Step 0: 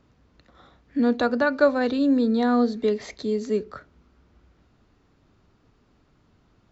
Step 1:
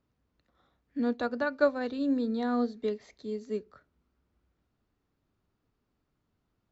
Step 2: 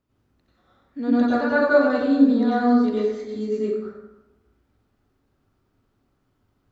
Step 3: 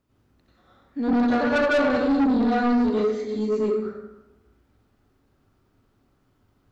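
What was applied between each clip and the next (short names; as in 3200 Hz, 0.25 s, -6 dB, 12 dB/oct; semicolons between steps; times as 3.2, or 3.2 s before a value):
upward expander 1.5:1, over -36 dBFS; gain -5.5 dB
plate-style reverb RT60 1 s, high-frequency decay 0.55×, pre-delay 80 ms, DRR -8.5 dB
soft clip -20.5 dBFS, distortion -8 dB; gain +3.5 dB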